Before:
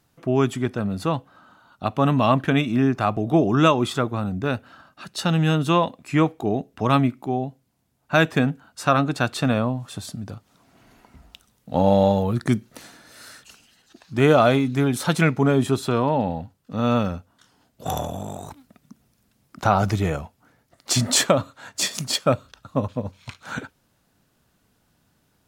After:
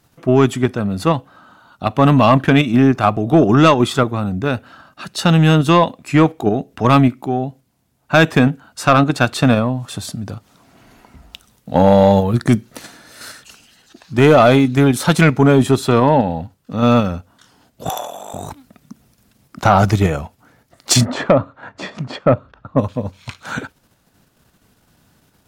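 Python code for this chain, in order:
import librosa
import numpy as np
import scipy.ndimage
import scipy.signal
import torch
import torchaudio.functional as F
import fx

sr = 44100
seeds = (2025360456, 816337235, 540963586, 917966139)

p1 = fx.lowpass(x, sr, hz=1500.0, slope=12, at=(21.04, 22.77), fade=0.02)
p2 = 10.0 ** (-9.5 / 20.0) * np.tanh(p1 / 10.0 ** (-9.5 / 20.0))
p3 = fx.level_steps(p2, sr, step_db=22)
p4 = p2 + (p3 * 10.0 ** (-2.5 / 20.0))
p5 = fx.highpass(p4, sr, hz=690.0, slope=12, at=(17.89, 18.34))
y = p5 * 10.0 ** (5.0 / 20.0)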